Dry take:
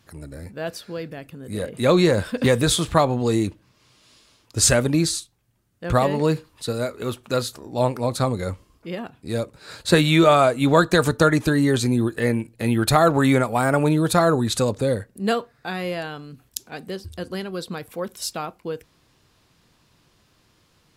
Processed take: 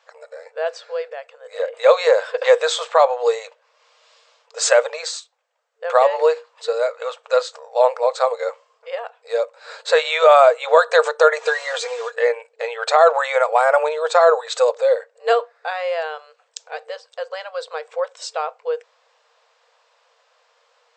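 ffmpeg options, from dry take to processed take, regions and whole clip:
-filter_complex "[0:a]asettb=1/sr,asplit=3[a][b][c];[a]atrim=end=11.384[d];[b]atrim=start=11.38:end=12.15,asetpts=PTS-STARTPTS,afade=t=in:d=0.004:c=qsin,afade=t=out:st=0.766:d=0.004:c=qsin,highpass=62,acrusher=bits=5:mode=log:mix=0:aa=0.000001,aecho=1:1:4.2:0.76,atrim=end_sample=33957[e];[c]atrim=start=12.146[f];[d][e]acrossfade=d=0.004:c1=hsin:c2=qsin[g];[g][f]acrossfade=d=0.004:c1=qsin:c2=hsin,afftfilt=real='re*between(b*sr/4096,450,8300)':imag='im*between(b*sr/4096,450,8300)':win_size=4096:overlap=0.75,highshelf=f=2.3k:g=-11.5,alimiter=level_in=9dB:limit=-1dB:release=50:level=0:latency=1,volume=-1dB"

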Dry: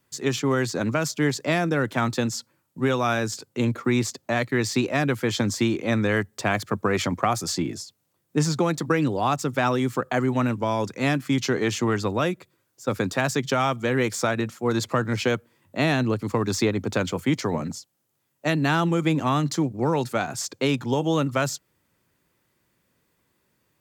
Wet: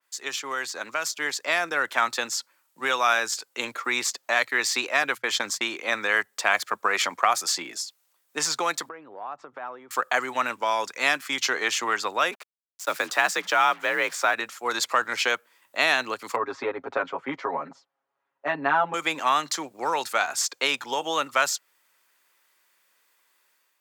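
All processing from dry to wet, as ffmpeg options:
-filter_complex "[0:a]asettb=1/sr,asplit=3[a][b][c];[a]atrim=end=5.034[d];[b]atrim=start=5.03:end=5.77,asetpts=PTS-STARTPTS,afade=t=in:d=0.004:c=qsin,afade=t=out:st=0.736:d=0.004:c=qsin,agate=range=-29dB:threshold=-31dB:ratio=16:release=100:detection=peak,bandreject=f=60:t=h:w=6,bandreject=f=120:t=h:w=6,bandreject=f=180:t=h:w=6[e];[c]atrim=start=5.766[f];[d][e]acrossfade=d=0.004:c1=hsin:c2=qsin[g];[g][f]acrossfade=d=0.004:c1=qsin:c2=hsin,asettb=1/sr,asplit=3[h][i][j];[h]atrim=end=8.894[k];[i]atrim=start=8.89:end=9.91,asetpts=PTS-STARTPTS,afade=t=in:d=0.004:c=qsin,afade=t=out:st=1.016:d=0.004:c=qsin,lowpass=1k,acompressor=threshold=-31dB:ratio=8:attack=3.2:release=140:knee=1:detection=peak[l];[j]atrim=start=9.906[m];[k][l]acrossfade=d=0.004:c1=hsin:c2=qsin[n];[n][m]acrossfade=d=0.004:c1=qsin:c2=hsin,asettb=1/sr,asplit=3[o][p][q];[o]atrim=end=12.314[r];[p]atrim=start=12.31:end=14.34,asetpts=PTS-STARTPTS,afade=t=in:d=0.004:c=qsin,afade=t=out:st=2.026:d=0.004:c=qsin,afreqshift=50,acrusher=bits=6:mix=0:aa=0.5,adynamicequalizer=threshold=0.00794:dfrequency=3600:dqfactor=0.7:tfrequency=3600:tqfactor=0.7:attack=5:release=100:ratio=0.375:range=3.5:mode=cutabove:tftype=highshelf[s];[q]atrim=start=14.336[t];[r][s]acrossfade=d=0.004:c1=hsin:c2=qsin[u];[u][t]acrossfade=d=0.004:c1=qsin:c2=hsin,asettb=1/sr,asplit=3[v][w][x];[v]atrim=end=16.364[y];[w]atrim=start=16.36:end=18.94,asetpts=PTS-STARTPTS,afade=t=in:d=0.004:c=qsin,afade=t=out:st=2.576:d=0.004:c=qsin,lowpass=1.1k,aecho=1:1:7.3:0.99,atrim=end_sample=113778[z];[x]atrim=start=18.936[aa];[y][z]acrossfade=d=0.004:c1=hsin:c2=qsin[ab];[ab][aa]acrossfade=d=0.004:c1=qsin:c2=hsin,highpass=970,dynaudnorm=f=940:g=3:m=6.5dB,adynamicequalizer=threshold=0.0178:dfrequency=2900:dqfactor=0.7:tfrequency=2900:tqfactor=0.7:attack=5:release=100:ratio=0.375:range=1.5:mode=cutabove:tftype=highshelf"

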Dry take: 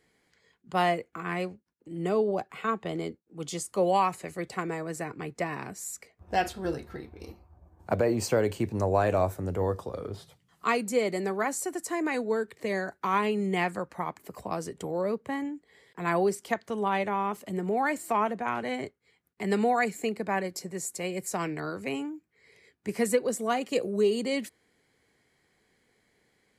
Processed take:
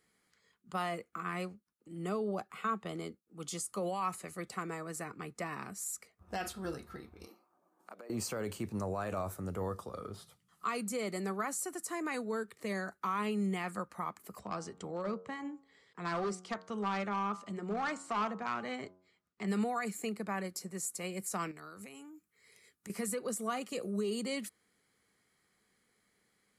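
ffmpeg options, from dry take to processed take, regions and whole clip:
-filter_complex "[0:a]asettb=1/sr,asplit=3[a][b][c];[a]atrim=end=7.274[d];[b]atrim=start=7.27:end=8.1,asetpts=PTS-STARTPTS,afade=t=in:d=0.004:c=qsin,afade=t=out:st=0.826:d=0.004:c=qsin,highpass=f=260:w=0.5412,highpass=f=260:w=1.3066,acompressor=threshold=-43dB:ratio=4:attack=3.2:release=140:knee=1:detection=peak[e];[c]atrim=start=8.096[f];[d][e]acrossfade=d=0.004:c1=hsin:c2=qsin[g];[g][f]acrossfade=d=0.004:c1=qsin:c2=hsin,asettb=1/sr,asplit=3[h][i][j];[h]atrim=end=14.394[k];[i]atrim=start=14.39:end=19.48,asetpts=PTS-STARTPTS,afade=t=in:d=0.004:c=qsin,afade=t=out:st=5.086:d=0.004:c=qsin,bandreject=f=91.87:t=h:w=4,bandreject=f=183.74:t=h:w=4,bandreject=f=275.61:t=h:w=4,bandreject=f=367.48:t=h:w=4,bandreject=f=459.35:t=h:w=4,bandreject=f=551.22:t=h:w=4,bandreject=f=643.09:t=h:w=4,bandreject=f=734.96:t=h:w=4,bandreject=f=826.83:t=h:w=4,bandreject=f=918.7:t=h:w=4,bandreject=f=1.01057k:t=h:w=4,bandreject=f=1.10244k:t=h:w=4,bandreject=f=1.19431k:t=h:w=4,bandreject=f=1.28618k:t=h:w=4,bandreject=f=1.37805k:t=h:w=4,bandreject=f=1.46992k:t=h:w=4,bandreject=f=1.56179k:t=h:w=4,asoftclip=type=hard:threshold=-23.5dB,lowpass=f=6.9k:w=0.5412,lowpass=f=6.9k:w=1.3066[l];[j]atrim=start=19.476[m];[k][l]acrossfade=d=0.004:c1=hsin:c2=qsin[n];[n][m]acrossfade=d=0.004:c1=qsin:c2=hsin,asettb=1/sr,asplit=3[o][p][q];[o]atrim=end=21.514[r];[p]atrim=start=21.51:end=22.9,asetpts=PTS-STARTPTS,afade=t=in:d=0.004:c=qsin,afade=t=out:st=1.386:d=0.004:c=qsin,aemphasis=mode=production:type=cd,bandreject=f=4.7k:w=22,acompressor=threshold=-40dB:ratio=10:attack=3.2:release=140:knee=1:detection=peak[s];[q]atrim=start=22.896[t];[r][s]acrossfade=d=0.004:c1=hsin:c2=qsin[u];[u][t]acrossfade=d=0.004:c1=qsin:c2=hsin,highshelf=f=3.5k:g=8,alimiter=limit=-20dB:level=0:latency=1:release=27,equalizer=f=200:t=o:w=0.33:g=7,equalizer=f=1.25k:t=o:w=0.33:g=11,equalizer=f=10k:t=o:w=0.33:g=4,volume=-9dB"

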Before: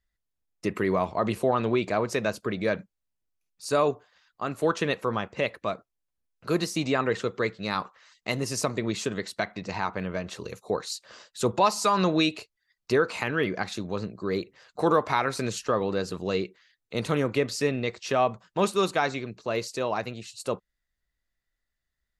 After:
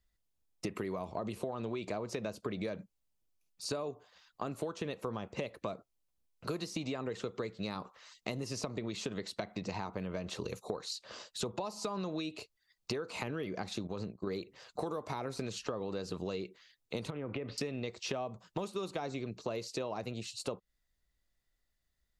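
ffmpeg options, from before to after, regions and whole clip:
-filter_complex "[0:a]asettb=1/sr,asplit=3[a][b][c];[a]atrim=end=13.874[d];[b]atrim=start=13.87:end=14.27,asetpts=PTS-STARTPTS,afade=t=in:d=0.004:c=qsin,afade=t=out:st=0.396:d=0.004:c=qsin,agate=range=-33dB:threshold=-35dB:ratio=3:release=100:detection=peak,acompressor=threshold=-32dB:ratio=3:attack=3.2:release=140:knee=1:detection=peak[e];[c]atrim=start=14.266[f];[d][e]acrossfade=d=0.004:c1=hsin:c2=qsin[g];[g][f]acrossfade=d=0.004:c1=qsin:c2=hsin,asettb=1/sr,asplit=3[h][i][j];[h]atrim=end=17.104[k];[i]atrim=start=17.1:end=17.58,asetpts=PTS-STARTPTS,afade=t=in:d=0.004:c=qsin,afade=t=out:st=0.476:d=0.004:c=qsin,lowpass=f=2.7k:w=0.5412,lowpass=f=2.7k:w=1.3066,acompressor=threshold=-32dB:ratio=10:attack=3.2:release=140:knee=1:detection=peak[l];[j]atrim=start=17.576[m];[k][l]acrossfade=d=0.004:c1=hsin:c2=qsin[n];[n][m]acrossfade=d=0.004:c1=qsin:c2=hsin,acrossover=split=670|5500[o][p][q];[o]acompressor=threshold=-29dB:ratio=4[r];[p]acompressor=threshold=-35dB:ratio=4[s];[q]acompressor=threshold=-53dB:ratio=4[t];[r][s][t]amix=inputs=3:normalize=0,equalizer=f=1.7k:w=1.6:g=-6,acompressor=threshold=-37dB:ratio=6,volume=2.5dB"

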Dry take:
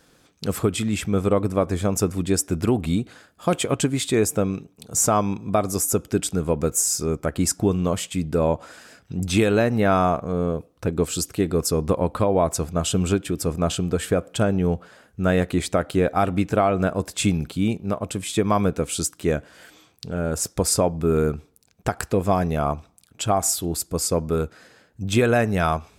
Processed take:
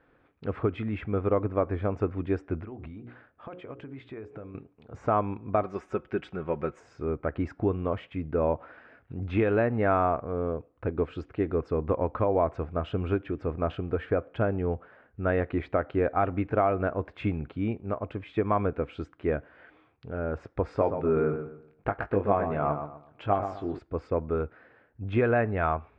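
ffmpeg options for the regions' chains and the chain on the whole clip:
-filter_complex "[0:a]asettb=1/sr,asplit=3[a][b][c];[a]atrim=end=2.604[d];[b]atrim=start=2.6:end=4.55,asetpts=PTS-STARTPTS,afade=t=in:d=0.004:c=qsin,afade=t=out:st=1.946:d=0.004:c=qsin,bandreject=f=60:t=h:w=6,bandreject=f=120:t=h:w=6,bandreject=f=180:t=h:w=6,bandreject=f=240:t=h:w=6,bandreject=f=300:t=h:w=6,bandreject=f=360:t=h:w=6,bandreject=f=420:t=h:w=6,bandreject=f=480:t=h:w=6,bandreject=f=540:t=h:w=6,acompressor=threshold=-30dB:ratio=16:attack=3.2:release=140:knee=1:detection=peak[e];[c]atrim=start=4.546[f];[d][e]acrossfade=d=0.004:c1=hsin:c2=qsin[g];[g][f]acrossfade=d=0.004:c1=qsin:c2=hsin,asettb=1/sr,asplit=3[h][i][j];[h]atrim=end=5.634[k];[i]atrim=start=5.63:end=6.8,asetpts=PTS-STARTPTS,afade=t=in:d=0.004:c=qsin,afade=t=out:st=1.166:d=0.004:c=qsin,tiltshelf=f=1.1k:g=-4,aecho=1:1:5.4:0.58,atrim=end_sample=51597,acrusher=bits=8:mode=log:mix=0:aa=0.000001[l];[j]atrim=start=6.796[m];[k][l]acrossfade=d=0.004:c1=hsin:c2=qsin[n];[n][m]acrossfade=d=0.004:c1=qsin:c2=hsin,asettb=1/sr,asplit=3[o][p][q];[o]atrim=end=20.654[r];[p]atrim=start=20.65:end=23.79,asetpts=PTS-STARTPTS,afade=t=in:d=0.004:c=qsin,afade=t=out:st=3.136:d=0.004:c=qsin,equalizer=f=76:t=o:w=0.95:g=-6,asplit=2[s][t];[t]adelay=20,volume=-7dB[u];[s][u]amix=inputs=2:normalize=0,atrim=end_sample=138474,asplit=2[v][w];[w]adelay=124,lowpass=f=2.7k:p=1,volume=-8dB,asplit=2[x][y];[y]adelay=124,lowpass=f=2.7k:p=1,volume=0.31,asplit=2[z][aa];[aa]adelay=124,lowpass=f=2.7k:p=1,volume=0.31,asplit=2[ab][ac];[ac]adelay=124,lowpass=f=2.7k:p=1,volume=0.31[ad];[v][x][z][ab][ad]amix=inputs=5:normalize=0,atrim=end_sample=138474[ae];[q]atrim=start=23.786[af];[r][ae]acrossfade=d=0.004:c1=hsin:c2=qsin[ag];[ag][af]acrossfade=d=0.004:c1=qsin:c2=hsin,lowpass=f=2.2k:w=0.5412,lowpass=f=2.2k:w=1.3066,equalizer=f=180:w=3.1:g=-9.5,volume=-4.5dB"

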